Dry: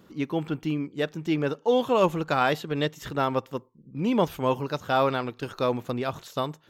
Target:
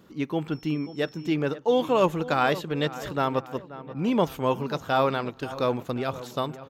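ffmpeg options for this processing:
ffmpeg -i in.wav -filter_complex "[0:a]asplit=2[link_01][link_02];[link_02]adelay=532,lowpass=frequency=2200:poles=1,volume=-15dB,asplit=2[link_03][link_04];[link_04]adelay=532,lowpass=frequency=2200:poles=1,volume=0.54,asplit=2[link_05][link_06];[link_06]adelay=532,lowpass=frequency=2200:poles=1,volume=0.54,asplit=2[link_07][link_08];[link_08]adelay=532,lowpass=frequency=2200:poles=1,volume=0.54,asplit=2[link_09][link_10];[link_10]adelay=532,lowpass=frequency=2200:poles=1,volume=0.54[link_11];[link_01][link_03][link_05][link_07][link_09][link_11]amix=inputs=6:normalize=0,asettb=1/sr,asplit=3[link_12][link_13][link_14];[link_12]atrim=end=0.524[link_15];[link_13]atrim=start=0.52:end=1.3,asetpts=PTS-STARTPTS,afade=type=in:duration=0.004:curve=qsin,afade=type=out:start_time=0.776:duration=0.004:curve=qsin,aeval=exprs='val(0)+0.00251*sin(2*PI*5400*n/s)':channel_layout=same[link_16];[link_14]atrim=start=1.296[link_17];[link_15][link_16]acrossfade=duration=0.004:curve1=hsin:curve2=qsin[link_18];[link_18][link_17]acrossfade=duration=0.004:curve1=qsin:curve2=hsin" out.wav

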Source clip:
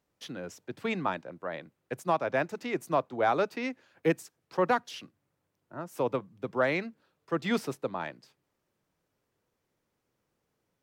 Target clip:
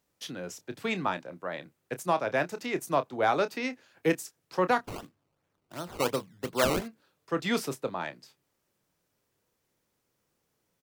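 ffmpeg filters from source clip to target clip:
ffmpeg -i in.wav -filter_complex "[0:a]highshelf=frequency=3700:gain=8,asplit=2[link_01][link_02];[link_02]adelay=28,volume=-12dB[link_03];[link_01][link_03]amix=inputs=2:normalize=0,asettb=1/sr,asplit=3[link_04][link_05][link_06];[link_04]atrim=end=4.844[link_07];[link_05]atrim=start=4.84:end=6.88,asetpts=PTS-STARTPTS,afade=type=in:duration=0.004:curve=qsin,afade=type=out:start_time=2.036:duration=0.004:curve=qsin,acrusher=samples=18:mix=1:aa=0.000001:lfo=1:lforange=18:lforate=2.8[link_08];[link_06]atrim=start=6.876[link_09];[link_07][link_08]acrossfade=duration=0.004:curve1=hsin:curve2=qsin[link_10];[link_10][link_09]acrossfade=duration=0.004:curve1=qsin:curve2=hsin" out.wav

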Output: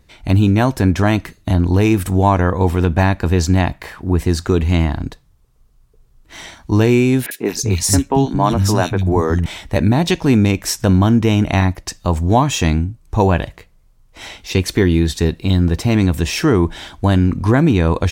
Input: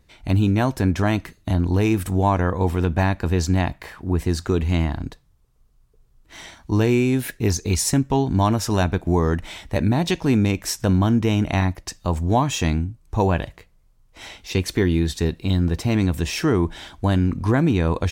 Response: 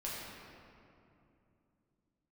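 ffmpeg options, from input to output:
-filter_complex "[0:a]asettb=1/sr,asplit=3[link_01][link_02][link_03];[link_01]atrim=end=7.264[link_04];[link_02]atrim=start=7.26:end=9.46,asetpts=PTS-STARTPTS,afade=type=in:duration=0.004:curve=qsin,afade=type=out:start_time=2.196:duration=0.004:curve=qsin,acrossover=split=210|2600[link_05][link_06][link_07];[link_07]adelay=50[link_08];[link_05]adelay=230[link_09];[link_09][link_06][link_08]amix=inputs=3:normalize=0,atrim=end_sample=97020[link_10];[link_03]atrim=start=9.456[link_11];[link_04][link_10]acrossfade=duration=0.004:curve1=hsin:curve2=qsin[link_12];[link_12][link_11]acrossfade=duration=0.004:curve1=qsin:curve2=hsin,volume=5.5dB"

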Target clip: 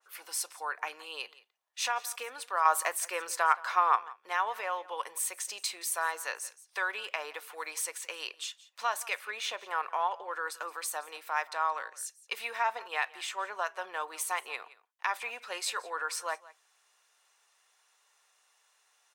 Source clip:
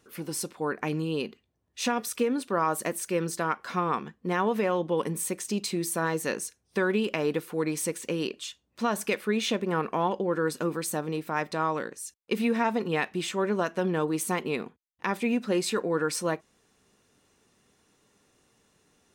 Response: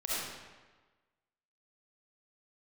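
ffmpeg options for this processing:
-filter_complex "[0:a]highpass=frequency=760:width=0.5412,highpass=frequency=760:width=1.3066,asettb=1/sr,asplit=3[link_01][link_02][link_03];[link_01]atrim=end=2.654[link_04];[link_02]atrim=start=2.65:end=3.96,asetpts=PTS-STARTPTS,afade=type=in:duration=0.004:curve=qsin,afade=type=out:start_time=1.306:duration=0.004:curve=qsin,acontrast=41[link_05];[link_03]atrim=start=3.956[link_06];[link_04][link_05]acrossfade=duration=0.004:curve1=hsin:curve2=qsin[link_07];[link_07][link_06]acrossfade=duration=0.004:curve1=qsin:curve2=hsin,aecho=1:1:172:0.1,adynamicequalizer=threshold=0.00794:dfrequency=1900:dqfactor=0.7:tfrequency=1900:tqfactor=0.7:attack=5:release=100:ratio=0.375:range=3.5:mode=cutabove:tftype=highshelf"

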